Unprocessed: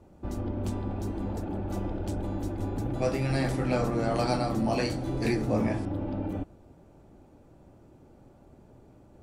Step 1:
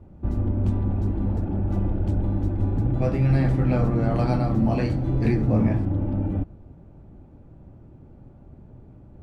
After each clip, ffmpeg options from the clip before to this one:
ffmpeg -i in.wav -af "bass=frequency=250:gain=11,treble=frequency=4000:gain=-14" out.wav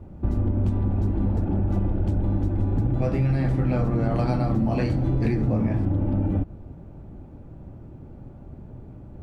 ffmpeg -i in.wav -af "acompressor=threshold=-24dB:ratio=6,volume=5dB" out.wav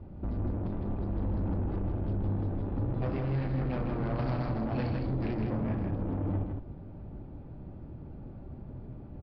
ffmpeg -i in.wav -af "aresample=11025,asoftclip=type=tanh:threshold=-25.5dB,aresample=44100,aecho=1:1:159:0.596,volume=-3.5dB" out.wav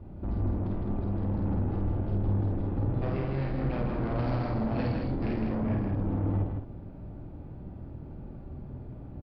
ffmpeg -i in.wav -filter_complex "[0:a]asplit=2[link_01][link_02];[link_02]adelay=50,volume=-2.5dB[link_03];[link_01][link_03]amix=inputs=2:normalize=0" out.wav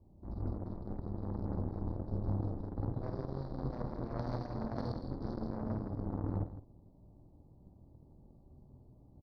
ffmpeg -i in.wav -af "asuperstop=centerf=2100:order=12:qfactor=0.75,aeval=exprs='0.119*(cos(1*acos(clip(val(0)/0.119,-1,1)))-cos(1*PI/2))+0.0299*(cos(3*acos(clip(val(0)/0.119,-1,1)))-cos(3*PI/2))+0.000944*(cos(7*acos(clip(val(0)/0.119,-1,1)))-cos(7*PI/2))':channel_layout=same,aemphasis=mode=production:type=cd,volume=-3dB" out.wav

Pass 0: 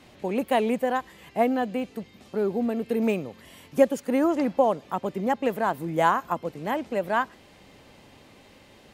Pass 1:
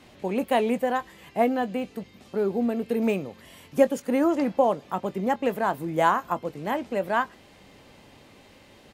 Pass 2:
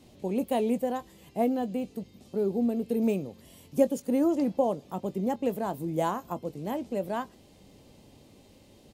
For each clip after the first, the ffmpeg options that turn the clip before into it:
ffmpeg -i in.wav -filter_complex "[0:a]asplit=2[link_01][link_02];[link_02]adelay=21,volume=-14dB[link_03];[link_01][link_03]amix=inputs=2:normalize=0" out.wav
ffmpeg -i in.wav -af "equalizer=frequency=1600:width=0.67:gain=-15" out.wav

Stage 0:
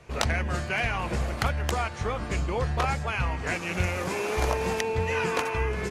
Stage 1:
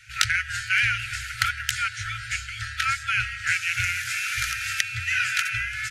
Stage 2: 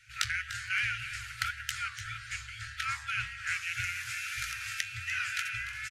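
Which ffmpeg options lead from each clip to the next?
ffmpeg -i in.wav -af "lowshelf=frequency=110:width_type=q:width=3:gain=-14,afftfilt=real='re*(1-between(b*sr/4096,120,1300))':imag='im*(1-between(b*sr/4096,120,1300))':win_size=4096:overlap=0.75,volume=8dB" out.wav
ffmpeg -i in.wav -af "flanger=delay=5.7:depth=9.1:regen=77:speed=1.8:shape=sinusoidal,aecho=1:1:296:0.224,volume=-5dB" out.wav

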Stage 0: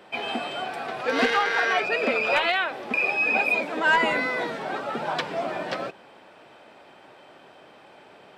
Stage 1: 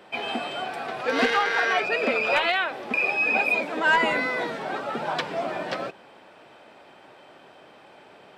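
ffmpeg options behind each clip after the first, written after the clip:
ffmpeg -i in.wav -af anull out.wav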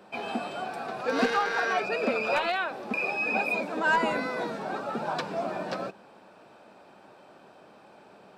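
ffmpeg -i in.wav -af "equalizer=frequency=200:width_type=o:width=0.33:gain=7,equalizer=frequency=2000:width_type=o:width=0.33:gain=-9,equalizer=frequency=3150:width_type=o:width=0.33:gain=-8,volume=-2.5dB" out.wav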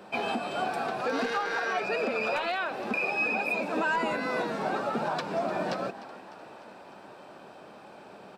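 ffmpeg -i in.wav -filter_complex "[0:a]alimiter=level_in=0.5dB:limit=-24dB:level=0:latency=1:release=251,volume=-0.5dB,asplit=7[link_01][link_02][link_03][link_04][link_05][link_06][link_07];[link_02]adelay=301,afreqshift=62,volume=-17dB[link_08];[link_03]adelay=602,afreqshift=124,volume=-21.2dB[link_09];[link_04]adelay=903,afreqshift=186,volume=-25.3dB[link_10];[link_05]adelay=1204,afreqshift=248,volume=-29.5dB[link_11];[link_06]adelay=1505,afreqshift=310,volume=-33.6dB[link_12];[link_07]adelay=1806,afreqshift=372,volume=-37.8dB[link_13];[link_01][link_08][link_09][link_10][link_11][link_12][link_13]amix=inputs=7:normalize=0,volume=4.5dB" out.wav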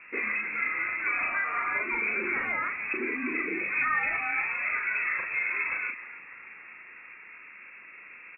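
ffmpeg -i in.wav -filter_complex "[0:a]aeval=exprs='val(0)+0.000891*(sin(2*PI*60*n/s)+sin(2*PI*2*60*n/s)/2+sin(2*PI*3*60*n/s)/3+sin(2*PI*4*60*n/s)/4+sin(2*PI*5*60*n/s)/5)':channel_layout=same,asplit=2[link_01][link_02];[link_02]adelay=38,volume=-4dB[link_03];[link_01][link_03]amix=inputs=2:normalize=0,lowpass=frequency=2400:width_type=q:width=0.5098,lowpass=frequency=2400:width_type=q:width=0.6013,lowpass=frequency=2400:width_type=q:width=0.9,lowpass=frequency=2400:width_type=q:width=2.563,afreqshift=-2800,volume=-1dB" out.wav

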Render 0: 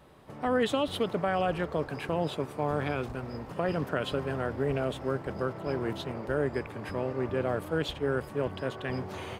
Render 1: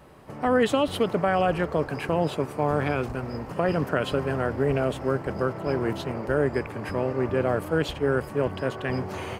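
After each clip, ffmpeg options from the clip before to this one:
ffmpeg -i in.wav -af "equalizer=frequency=3600:width_type=o:width=0.29:gain=-7,volume=5.5dB" out.wav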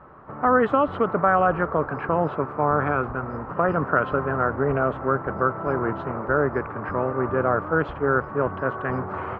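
ffmpeg -i in.wav -af "lowpass=frequency=1300:width_type=q:width=3.7" out.wav

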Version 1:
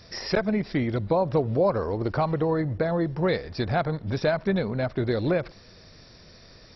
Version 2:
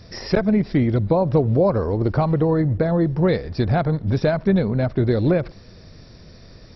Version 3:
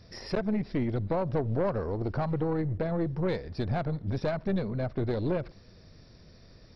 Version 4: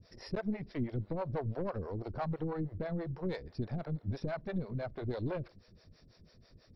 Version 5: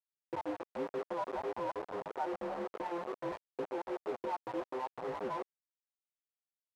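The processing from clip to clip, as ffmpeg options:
ffmpeg -i in.wav -af "lowshelf=frequency=460:gain=9.5" out.wav
ffmpeg -i in.wav -af "aeval=exprs='(tanh(5.01*val(0)+0.5)-tanh(0.5))/5.01':channel_layout=same,volume=-7.5dB" out.wav
ffmpeg -i in.wav -filter_complex "[0:a]acrossover=split=420[link_01][link_02];[link_01]aeval=exprs='val(0)*(1-1/2+1/2*cos(2*PI*6.1*n/s))':channel_layout=same[link_03];[link_02]aeval=exprs='val(0)*(1-1/2-1/2*cos(2*PI*6.1*n/s))':channel_layout=same[link_04];[link_03][link_04]amix=inputs=2:normalize=0,volume=-2.5dB" out.wav
ffmpeg -i in.wav -af "afftfilt=real='real(if(between(b,1,1008),(2*floor((b-1)/24)+1)*24-b,b),0)':imag='imag(if(between(b,1,1008),(2*floor((b-1)/24)+1)*24-b,b),0)*if(between(b,1,1008),-1,1)':win_size=2048:overlap=0.75,acrusher=bits=5:mix=0:aa=0.000001,bandpass=frequency=670:width_type=q:width=1.5:csg=0,volume=2.5dB" out.wav

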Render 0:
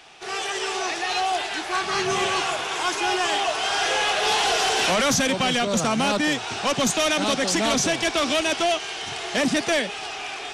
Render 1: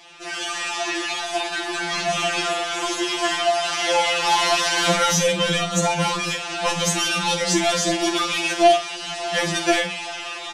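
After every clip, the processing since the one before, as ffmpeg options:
ffmpeg -i in.wav -filter_complex "[0:a]asplit=2[link_01][link_02];[link_02]aecho=0:1:48|87:0.355|0.15[link_03];[link_01][link_03]amix=inputs=2:normalize=0,afftfilt=real='re*2.83*eq(mod(b,8),0)':imag='im*2.83*eq(mod(b,8),0)':win_size=2048:overlap=0.75,volume=3.5dB" out.wav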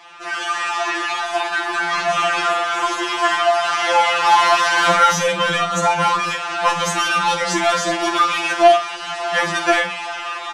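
ffmpeg -i in.wav -af "equalizer=frequency=1200:width=0.8:gain=14.5,volume=-4dB" out.wav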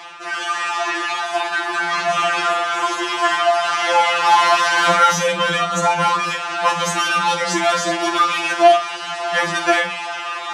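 ffmpeg -i in.wav -af "highpass=frequency=50:width=0.5412,highpass=frequency=50:width=1.3066,areverse,acompressor=mode=upward:threshold=-23dB:ratio=2.5,areverse" out.wav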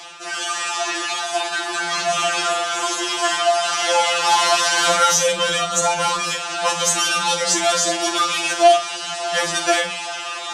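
ffmpeg -i in.wav -filter_complex "[0:a]equalizer=frequency=250:width_type=o:width=1:gain=-8,equalizer=frequency=1000:width_type=o:width=1:gain=-8,equalizer=frequency=2000:width_type=o:width=1:gain=-7,equalizer=frequency=8000:width_type=o:width=1:gain=6,acrossover=split=320|1500[link_01][link_02][link_03];[link_01]asoftclip=type=tanh:threshold=-39.5dB[link_04];[link_04][link_02][link_03]amix=inputs=3:normalize=0,volume=4dB" out.wav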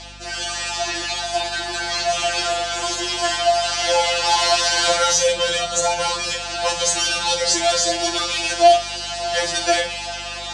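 ffmpeg -i in.wav -af "highpass=120,equalizer=frequency=180:width_type=q:width=4:gain=-7,equalizer=frequency=590:width_type=q:width=4:gain=6,equalizer=frequency=1200:width_type=q:width=4:gain=-9,equalizer=frequency=4500:width_type=q:width=4:gain=7,lowpass=frequency=9100:width=0.5412,lowpass=frequency=9100:width=1.3066,aeval=exprs='val(0)+0.01*(sin(2*PI*50*n/s)+sin(2*PI*2*50*n/s)/2+sin(2*PI*3*50*n/s)/3+sin(2*PI*4*50*n/s)/4+sin(2*PI*5*50*n/s)/5)':channel_layout=same,volume=-1.5dB" out.wav

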